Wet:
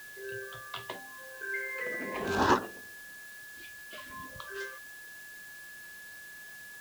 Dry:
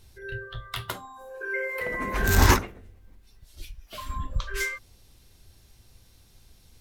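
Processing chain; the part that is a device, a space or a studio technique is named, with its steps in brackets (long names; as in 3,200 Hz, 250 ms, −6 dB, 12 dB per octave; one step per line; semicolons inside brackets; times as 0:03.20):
shortwave radio (band-pass filter 260–3,000 Hz; amplitude tremolo 0.32 Hz, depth 36%; auto-filter notch sine 0.49 Hz 550–2,200 Hz; steady tone 1,700 Hz −46 dBFS; white noise bed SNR 16 dB)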